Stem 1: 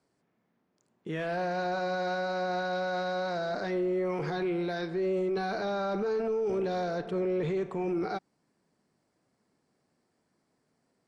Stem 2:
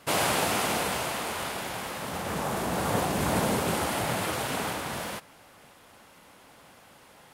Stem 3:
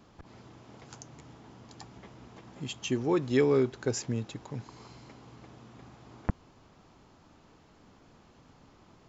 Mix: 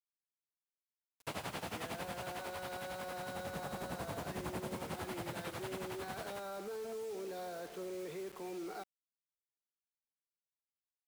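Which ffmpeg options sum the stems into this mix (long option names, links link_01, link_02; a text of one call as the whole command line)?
ffmpeg -i stem1.wav -i stem2.wav -filter_complex "[0:a]highpass=300,adelay=650,volume=-9.5dB[link_01];[1:a]tremolo=f=11:d=0.86,adelay=1200,volume=-6dB[link_02];[link_01][link_02]amix=inputs=2:normalize=0,acrossover=split=200|5600[link_03][link_04][link_05];[link_03]acompressor=threshold=-45dB:ratio=4[link_06];[link_04]acompressor=threshold=-41dB:ratio=4[link_07];[link_05]acompressor=threshold=-59dB:ratio=4[link_08];[link_06][link_07][link_08]amix=inputs=3:normalize=0,acrusher=bits=8:mix=0:aa=0.000001" out.wav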